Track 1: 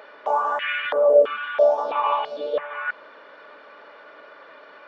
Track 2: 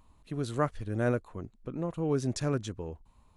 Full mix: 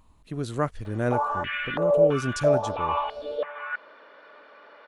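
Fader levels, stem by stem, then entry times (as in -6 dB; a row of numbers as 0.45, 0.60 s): -4.5, +2.5 dB; 0.85, 0.00 s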